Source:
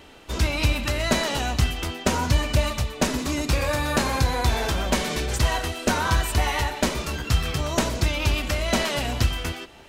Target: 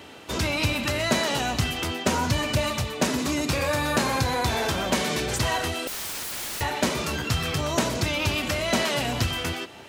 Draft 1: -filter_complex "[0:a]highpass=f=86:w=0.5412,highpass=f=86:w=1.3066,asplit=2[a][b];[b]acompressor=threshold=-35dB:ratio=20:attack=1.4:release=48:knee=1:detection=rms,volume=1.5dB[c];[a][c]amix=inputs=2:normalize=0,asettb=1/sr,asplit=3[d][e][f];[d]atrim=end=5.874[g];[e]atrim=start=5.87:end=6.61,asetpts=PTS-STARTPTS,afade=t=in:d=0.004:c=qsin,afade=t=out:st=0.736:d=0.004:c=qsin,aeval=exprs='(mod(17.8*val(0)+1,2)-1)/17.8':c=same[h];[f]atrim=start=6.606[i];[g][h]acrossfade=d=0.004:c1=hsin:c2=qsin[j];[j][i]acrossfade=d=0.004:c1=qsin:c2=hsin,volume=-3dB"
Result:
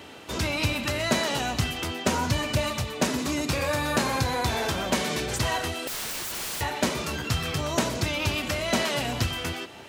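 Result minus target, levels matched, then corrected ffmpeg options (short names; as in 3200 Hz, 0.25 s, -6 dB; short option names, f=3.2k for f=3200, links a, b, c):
compressor: peak gain reduction +6.5 dB
-filter_complex "[0:a]highpass=f=86:w=0.5412,highpass=f=86:w=1.3066,asplit=2[a][b];[b]acompressor=threshold=-28dB:ratio=20:attack=1.4:release=48:knee=1:detection=rms,volume=1.5dB[c];[a][c]amix=inputs=2:normalize=0,asettb=1/sr,asplit=3[d][e][f];[d]atrim=end=5.874[g];[e]atrim=start=5.87:end=6.61,asetpts=PTS-STARTPTS,afade=t=in:d=0.004:c=qsin,afade=t=out:st=0.736:d=0.004:c=qsin,aeval=exprs='(mod(17.8*val(0)+1,2)-1)/17.8':c=same[h];[f]atrim=start=6.606[i];[g][h]acrossfade=d=0.004:c1=hsin:c2=qsin[j];[j][i]acrossfade=d=0.004:c1=qsin:c2=hsin,volume=-3dB"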